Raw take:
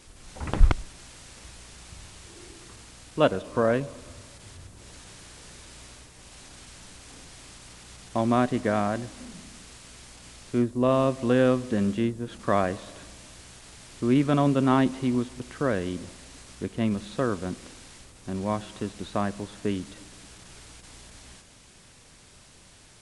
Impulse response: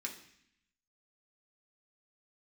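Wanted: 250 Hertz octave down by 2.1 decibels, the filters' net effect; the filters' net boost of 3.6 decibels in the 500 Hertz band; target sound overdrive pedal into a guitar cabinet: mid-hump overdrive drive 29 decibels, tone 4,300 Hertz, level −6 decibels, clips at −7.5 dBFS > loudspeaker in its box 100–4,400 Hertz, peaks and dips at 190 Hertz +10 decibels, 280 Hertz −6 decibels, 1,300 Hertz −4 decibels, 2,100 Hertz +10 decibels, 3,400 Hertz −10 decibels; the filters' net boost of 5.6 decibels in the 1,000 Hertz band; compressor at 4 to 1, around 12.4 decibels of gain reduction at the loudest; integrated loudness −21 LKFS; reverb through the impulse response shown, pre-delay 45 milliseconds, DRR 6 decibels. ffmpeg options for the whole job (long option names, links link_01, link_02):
-filter_complex "[0:a]equalizer=frequency=250:width_type=o:gain=-5,equalizer=frequency=500:width_type=o:gain=3.5,equalizer=frequency=1000:width_type=o:gain=7.5,acompressor=threshold=-25dB:ratio=4,asplit=2[link_01][link_02];[1:a]atrim=start_sample=2205,adelay=45[link_03];[link_02][link_03]afir=irnorm=-1:irlink=0,volume=-5.5dB[link_04];[link_01][link_04]amix=inputs=2:normalize=0,asplit=2[link_05][link_06];[link_06]highpass=frequency=720:poles=1,volume=29dB,asoftclip=type=tanh:threshold=-7.5dB[link_07];[link_05][link_07]amix=inputs=2:normalize=0,lowpass=frequency=4300:poles=1,volume=-6dB,highpass=100,equalizer=frequency=190:width_type=q:width=4:gain=10,equalizer=frequency=280:width_type=q:width=4:gain=-6,equalizer=frequency=1300:width_type=q:width=4:gain=-4,equalizer=frequency=2100:width_type=q:width=4:gain=10,equalizer=frequency=3400:width_type=q:width=4:gain=-10,lowpass=frequency=4400:width=0.5412,lowpass=frequency=4400:width=1.3066,volume=-0.5dB"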